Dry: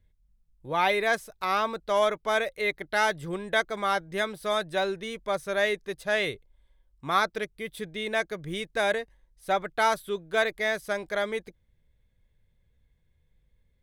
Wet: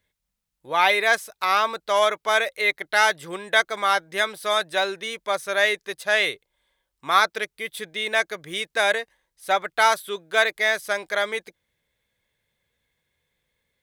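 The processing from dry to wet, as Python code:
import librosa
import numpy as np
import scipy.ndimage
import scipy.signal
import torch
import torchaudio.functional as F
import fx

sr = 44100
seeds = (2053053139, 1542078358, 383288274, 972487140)

y = fx.highpass(x, sr, hz=990.0, slope=6)
y = y * librosa.db_to_amplitude(8.5)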